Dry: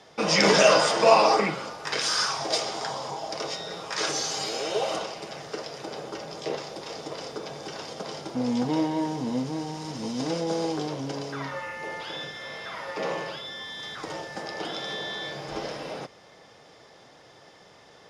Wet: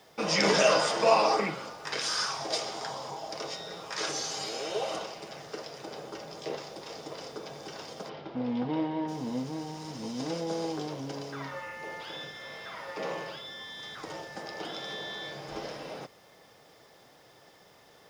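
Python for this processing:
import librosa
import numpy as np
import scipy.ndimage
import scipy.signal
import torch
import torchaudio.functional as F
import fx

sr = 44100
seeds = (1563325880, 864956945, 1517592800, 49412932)

y = fx.quant_dither(x, sr, seeds[0], bits=10, dither='none')
y = fx.lowpass(y, sr, hz=3600.0, slope=24, at=(8.08, 9.07), fade=0.02)
y = F.gain(torch.from_numpy(y), -5.0).numpy()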